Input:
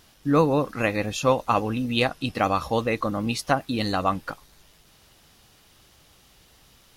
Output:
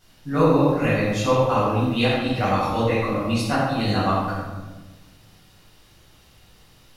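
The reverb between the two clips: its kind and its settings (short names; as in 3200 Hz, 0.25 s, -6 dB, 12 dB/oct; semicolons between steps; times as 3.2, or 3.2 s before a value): shoebox room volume 760 m³, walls mixed, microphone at 7.4 m; gain -11.5 dB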